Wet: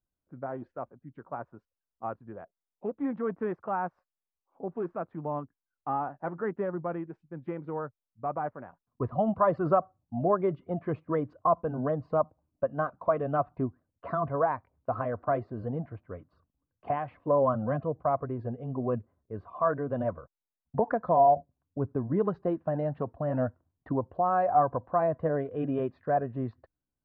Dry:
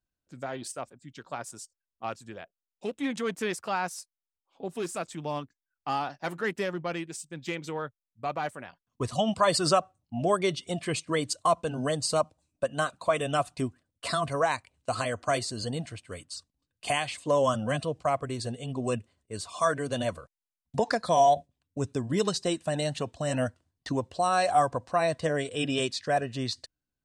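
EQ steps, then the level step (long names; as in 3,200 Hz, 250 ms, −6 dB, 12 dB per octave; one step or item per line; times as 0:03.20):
low-pass filter 1,300 Hz 24 dB per octave
0.0 dB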